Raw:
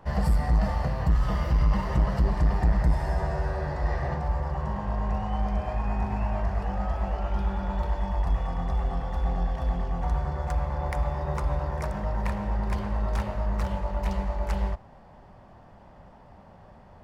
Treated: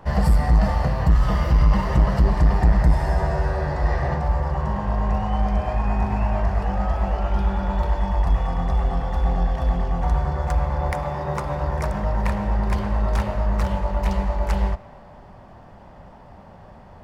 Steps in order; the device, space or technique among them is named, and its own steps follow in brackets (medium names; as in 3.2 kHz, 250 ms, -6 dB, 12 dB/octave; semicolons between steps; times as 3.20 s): 10.93–11.61 s: high-pass 110 Hz 12 dB/octave; filtered reverb send (on a send: high-pass 360 Hz + low-pass 3.3 kHz + reverberation RT60 2.0 s, pre-delay 99 ms, DRR 18.5 dB); on the sum: trim +6 dB